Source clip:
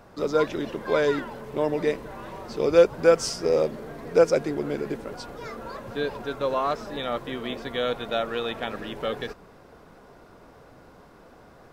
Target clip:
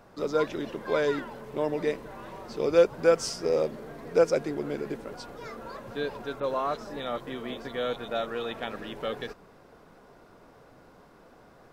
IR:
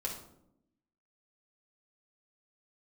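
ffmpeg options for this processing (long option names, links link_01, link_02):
-filter_complex "[0:a]equalizer=frequency=63:width=1.3:gain=-5,asettb=1/sr,asplit=3[link_01][link_02][link_03];[link_01]atrim=end=6.404[link_04];[link_02]atrim=start=6.4:end=8.51,asetpts=PTS-STARTPTS,afade=type=in:duration=0.004:curve=qsin,afade=type=out:start_time=2.106:duration=0.004:curve=qsin,acrossover=split=2800[link_05][link_06];[link_06]adelay=30[link_07];[link_05][link_07]amix=inputs=2:normalize=0,atrim=end_sample=93051[link_08];[link_03]atrim=start=8.506[link_09];[link_04][link_08]acrossfade=duration=0.004:curve1=hsin:curve2=qsin[link_10];[link_10][link_09]acrossfade=duration=0.004:curve1=qsin:curve2=hsin,volume=-3.5dB"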